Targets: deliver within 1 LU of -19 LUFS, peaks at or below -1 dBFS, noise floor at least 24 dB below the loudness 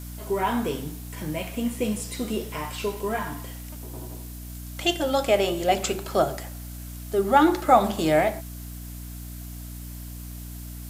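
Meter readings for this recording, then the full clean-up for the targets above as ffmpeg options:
hum 60 Hz; highest harmonic 300 Hz; hum level -35 dBFS; noise floor -38 dBFS; noise floor target -49 dBFS; loudness -25.0 LUFS; peak level -5.0 dBFS; loudness target -19.0 LUFS
-> -af "bandreject=f=60:t=h:w=6,bandreject=f=120:t=h:w=6,bandreject=f=180:t=h:w=6,bandreject=f=240:t=h:w=6,bandreject=f=300:t=h:w=6"
-af "afftdn=nr=11:nf=-38"
-af "volume=2,alimiter=limit=0.891:level=0:latency=1"

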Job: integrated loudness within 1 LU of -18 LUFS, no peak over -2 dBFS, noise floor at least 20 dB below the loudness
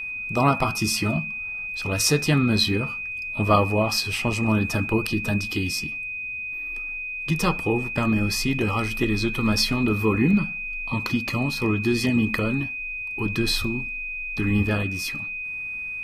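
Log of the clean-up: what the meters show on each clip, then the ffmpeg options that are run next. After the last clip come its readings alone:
steady tone 2.5 kHz; tone level -29 dBFS; loudness -23.5 LUFS; peak level -6.5 dBFS; loudness target -18.0 LUFS
-> -af "bandreject=f=2500:w=30"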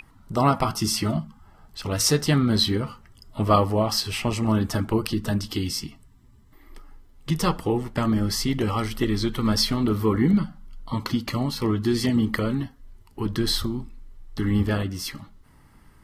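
steady tone not found; loudness -24.5 LUFS; peak level -7.0 dBFS; loudness target -18.0 LUFS
-> -af "volume=2.11,alimiter=limit=0.794:level=0:latency=1"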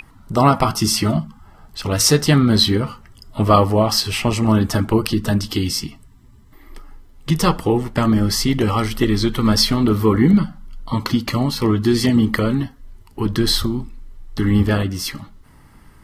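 loudness -18.0 LUFS; peak level -2.0 dBFS; noise floor -47 dBFS

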